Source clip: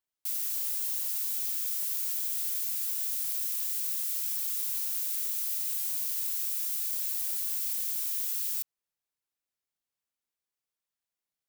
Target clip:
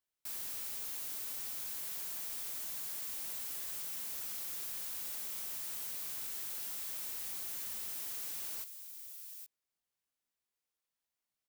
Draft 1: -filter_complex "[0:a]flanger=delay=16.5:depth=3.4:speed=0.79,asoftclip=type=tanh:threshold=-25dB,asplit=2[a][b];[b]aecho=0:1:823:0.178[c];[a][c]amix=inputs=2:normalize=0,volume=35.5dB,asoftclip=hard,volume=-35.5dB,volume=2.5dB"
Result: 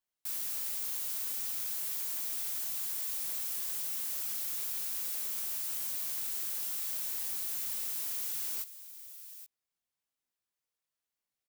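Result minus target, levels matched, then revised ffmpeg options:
overloaded stage: distortion -5 dB
-filter_complex "[0:a]flanger=delay=16.5:depth=3.4:speed=0.79,asoftclip=type=tanh:threshold=-25dB,asplit=2[a][b];[b]aecho=0:1:823:0.178[c];[a][c]amix=inputs=2:normalize=0,volume=42.5dB,asoftclip=hard,volume=-42.5dB,volume=2.5dB"

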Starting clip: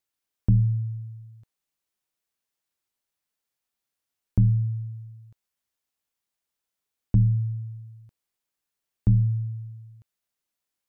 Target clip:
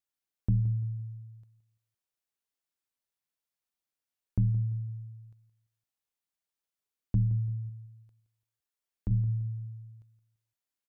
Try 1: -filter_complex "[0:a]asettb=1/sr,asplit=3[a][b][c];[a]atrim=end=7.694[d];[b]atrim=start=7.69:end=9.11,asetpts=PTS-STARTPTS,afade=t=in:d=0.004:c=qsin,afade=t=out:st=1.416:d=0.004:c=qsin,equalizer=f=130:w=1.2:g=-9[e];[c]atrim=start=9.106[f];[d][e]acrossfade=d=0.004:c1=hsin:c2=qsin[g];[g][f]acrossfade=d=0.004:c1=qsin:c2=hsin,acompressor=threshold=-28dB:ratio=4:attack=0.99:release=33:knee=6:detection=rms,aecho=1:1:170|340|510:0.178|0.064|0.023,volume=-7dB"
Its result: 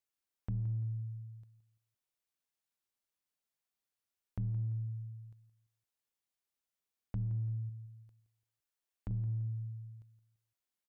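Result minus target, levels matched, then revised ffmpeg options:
compressor: peak gain reduction +12 dB
-filter_complex "[0:a]asettb=1/sr,asplit=3[a][b][c];[a]atrim=end=7.694[d];[b]atrim=start=7.69:end=9.11,asetpts=PTS-STARTPTS,afade=t=in:d=0.004:c=qsin,afade=t=out:st=1.416:d=0.004:c=qsin,equalizer=f=130:w=1.2:g=-9[e];[c]atrim=start=9.106[f];[d][e]acrossfade=d=0.004:c1=hsin:c2=qsin[g];[g][f]acrossfade=d=0.004:c1=qsin:c2=hsin,aecho=1:1:170|340|510:0.178|0.064|0.023,volume=-7dB"

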